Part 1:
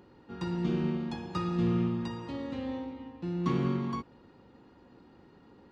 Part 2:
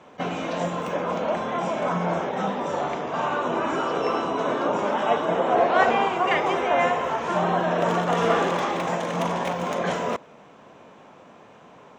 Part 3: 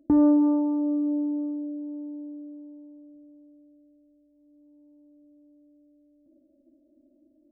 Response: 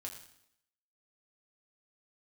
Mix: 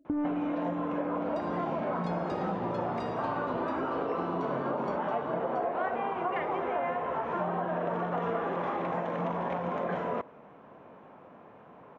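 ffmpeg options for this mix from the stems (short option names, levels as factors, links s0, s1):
-filter_complex "[0:a]alimiter=level_in=1.41:limit=0.0631:level=0:latency=1:release=192,volume=0.708,adelay=950,volume=0.841,asplit=2[s0][s1];[s1]volume=0.531[s2];[1:a]lowpass=1700,adelay=50,volume=0.668,asplit=2[s3][s4];[s4]volume=0.133[s5];[2:a]asoftclip=type=tanh:threshold=0.15,volume=0.473,asplit=2[s6][s7];[s7]volume=0.631[s8];[3:a]atrim=start_sample=2205[s9];[s5][s8]amix=inputs=2:normalize=0[s10];[s10][s9]afir=irnorm=-1:irlink=0[s11];[s2]aecho=0:1:678:1[s12];[s0][s3][s6][s11][s12]amix=inputs=5:normalize=0,acompressor=threshold=0.0398:ratio=6"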